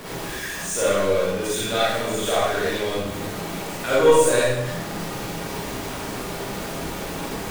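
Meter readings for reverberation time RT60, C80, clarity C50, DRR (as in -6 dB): 0.90 s, 1.0 dB, -3.5 dB, -8.5 dB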